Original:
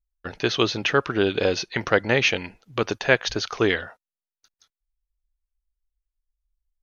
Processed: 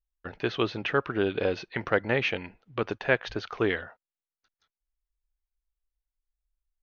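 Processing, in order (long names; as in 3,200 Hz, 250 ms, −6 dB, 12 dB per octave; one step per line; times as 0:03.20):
low-pass filter 2,700 Hz 12 dB per octave
level −5 dB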